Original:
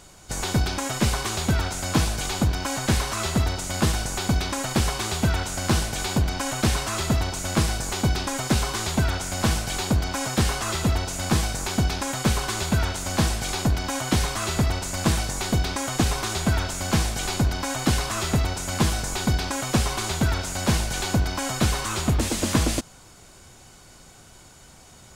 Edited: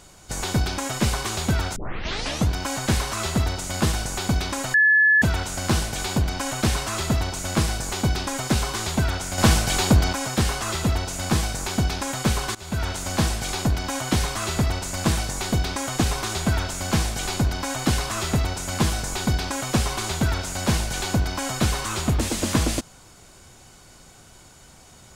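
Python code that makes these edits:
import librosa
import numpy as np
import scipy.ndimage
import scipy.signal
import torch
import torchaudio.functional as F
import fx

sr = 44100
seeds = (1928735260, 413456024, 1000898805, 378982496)

y = fx.edit(x, sr, fx.tape_start(start_s=1.76, length_s=0.73),
    fx.bleep(start_s=4.74, length_s=0.48, hz=1720.0, db=-13.0),
    fx.clip_gain(start_s=9.38, length_s=0.75, db=5.5),
    fx.fade_in_from(start_s=12.55, length_s=0.37, floor_db=-21.5), tone=tone)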